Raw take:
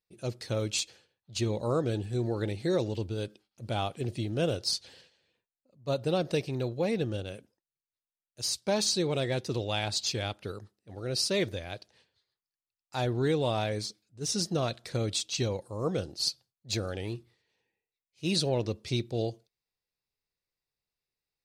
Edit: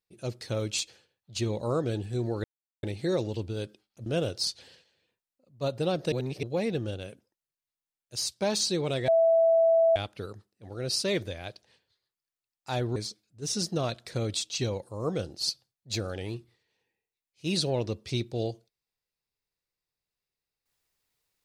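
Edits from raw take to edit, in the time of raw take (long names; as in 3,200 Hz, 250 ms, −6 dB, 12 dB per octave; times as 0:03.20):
0:02.44: splice in silence 0.39 s
0:03.67–0:04.32: remove
0:06.38–0:06.69: reverse
0:09.34–0:10.22: beep over 659 Hz −18 dBFS
0:13.22–0:13.75: remove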